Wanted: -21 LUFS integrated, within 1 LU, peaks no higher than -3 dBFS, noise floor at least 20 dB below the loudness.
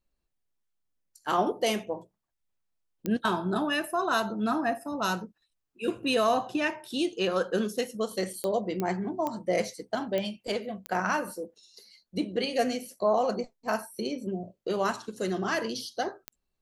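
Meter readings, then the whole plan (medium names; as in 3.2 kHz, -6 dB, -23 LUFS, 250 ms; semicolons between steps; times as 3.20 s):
clicks found 7; loudness -30.0 LUFS; peak level -13.5 dBFS; loudness target -21.0 LUFS
-> de-click; trim +9 dB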